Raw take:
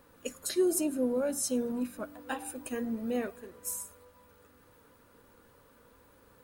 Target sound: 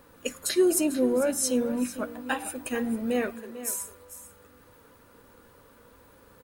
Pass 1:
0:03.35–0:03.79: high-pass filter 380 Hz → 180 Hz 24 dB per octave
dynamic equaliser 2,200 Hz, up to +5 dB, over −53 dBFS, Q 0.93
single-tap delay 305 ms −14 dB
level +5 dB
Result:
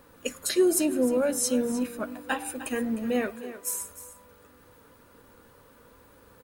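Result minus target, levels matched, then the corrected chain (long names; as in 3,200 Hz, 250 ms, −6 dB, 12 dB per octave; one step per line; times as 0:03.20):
echo 142 ms early
0:03.35–0:03.79: high-pass filter 380 Hz → 180 Hz 24 dB per octave
dynamic equaliser 2,200 Hz, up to +5 dB, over −53 dBFS, Q 0.93
single-tap delay 447 ms −14 dB
level +5 dB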